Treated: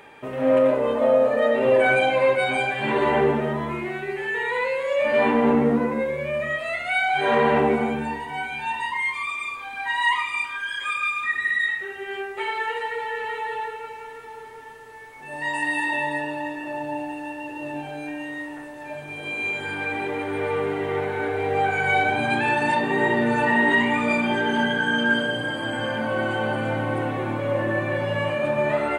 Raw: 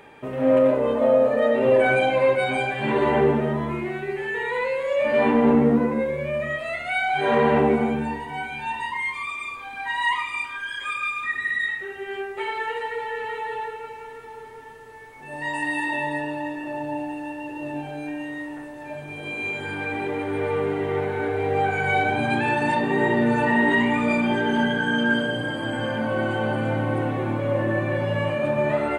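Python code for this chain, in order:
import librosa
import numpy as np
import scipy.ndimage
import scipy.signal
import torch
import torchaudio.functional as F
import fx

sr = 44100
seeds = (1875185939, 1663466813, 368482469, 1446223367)

y = fx.low_shelf(x, sr, hz=490.0, db=-6.0)
y = F.gain(torch.from_numpy(y), 2.5).numpy()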